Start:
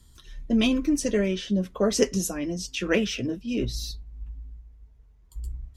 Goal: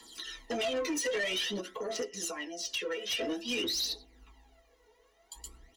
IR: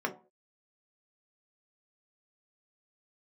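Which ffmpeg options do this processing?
-filter_complex "[0:a]aecho=1:1:6.1:0.32[s0];[1:a]atrim=start_sample=2205,asetrate=79380,aresample=44100[s1];[s0][s1]afir=irnorm=-1:irlink=0,acrossover=split=220|1200|4000[s2][s3][s4][s5];[s2]acompressor=threshold=0.00794:ratio=4[s6];[s3]acompressor=threshold=0.0282:ratio=4[s7];[s4]acompressor=threshold=0.0158:ratio=4[s8];[s5]acompressor=threshold=0.00316:ratio=4[s9];[s6][s7][s8][s9]amix=inputs=4:normalize=0,asplit=2[s10][s11];[s11]adelay=99.13,volume=0.0398,highshelf=f=4000:g=-2.23[s12];[s10][s12]amix=inputs=2:normalize=0,asplit=3[s13][s14][s15];[s13]afade=t=out:st=1.6:d=0.02[s16];[s14]acompressor=threshold=0.0112:ratio=16,afade=t=in:st=1.6:d=0.02,afade=t=out:st=3.1:d=0.02[s17];[s15]afade=t=in:st=3.1:d=0.02[s18];[s16][s17][s18]amix=inputs=3:normalize=0,bass=f=250:g=-13,treble=f=4000:g=11,aphaser=in_gain=1:out_gain=1:delay=2.2:decay=0.64:speed=0.51:type=triangular,alimiter=level_in=1.12:limit=0.0631:level=0:latency=1:release=102,volume=0.891,asoftclip=type=tanh:threshold=0.0211,volume=2"

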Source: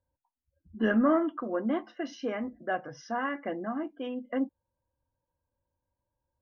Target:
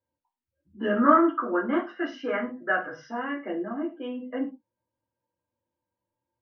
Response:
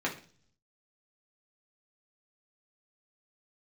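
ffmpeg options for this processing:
-filter_complex "[0:a]asettb=1/sr,asplit=3[s0][s1][s2];[s0]atrim=end=0.964[s3];[s1]atrim=start=0.96:end=3.06,asetpts=PTS-STARTPTS,afade=t=in:d=0.004:c=qsin,afade=t=out:st=2.096:d=0.004:c=qsin,equalizer=f=1400:w=1.4:g=14.5[s4];[s2]atrim=start=3.056[s5];[s3][s4]acrossfade=d=0.004:c1=hsin:c2=qsin[s6];[s6][s5]acrossfade=d=0.004:c1=qsin:c2=hsin[s7];[1:a]atrim=start_sample=2205,afade=t=out:st=0.21:d=0.01,atrim=end_sample=9702,asetrate=52920,aresample=44100[s8];[s7][s8]afir=irnorm=-1:irlink=0,volume=0.531"

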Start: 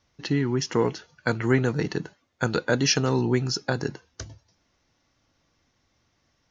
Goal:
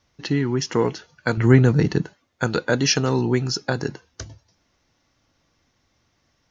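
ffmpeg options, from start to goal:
-filter_complex "[0:a]asettb=1/sr,asplit=3[s0][s1][s2];[s0]atrim=end=1.374[s3];[s1]atrim=start=1.37:end=2.02,asetpts=PTS-STARTPTS,afade=t=in:d=0.004:c=qsin,afade=t=out:st=0.646:d=0.004:c=qsin,lowshelf=f=230:g=11[s4];[s2]atrim=start=2.016[s5];[s3][s4]acrossfade=d=0.004:c1=hsin:c2=qsin[s6];[s6][s5]acrossfade=d=0.004:c1=qsin:c2=hsin,volume=1.33"

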